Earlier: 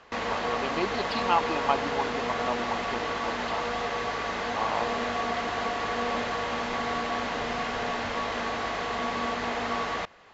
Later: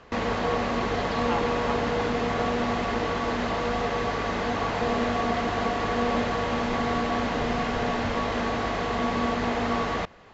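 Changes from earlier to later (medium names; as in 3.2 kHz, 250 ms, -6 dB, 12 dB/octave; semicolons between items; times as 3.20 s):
speech -7.5 dB; background: add bass shelf 420 Hz +11 dB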